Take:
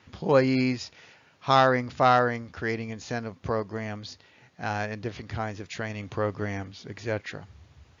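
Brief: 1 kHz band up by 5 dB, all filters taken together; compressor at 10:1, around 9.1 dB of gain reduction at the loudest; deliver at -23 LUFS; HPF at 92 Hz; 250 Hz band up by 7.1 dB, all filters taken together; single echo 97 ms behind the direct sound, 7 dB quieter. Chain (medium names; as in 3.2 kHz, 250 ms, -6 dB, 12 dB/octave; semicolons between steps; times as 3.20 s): high-pass 92 Hz; peaking EQ 250 Hz +7.5 dB; peaking EQ 1 kHz +6.5 dB; compression 10:1, threshold -19 dBFS; delay 97 ms -7 dB; trim +4.5 dB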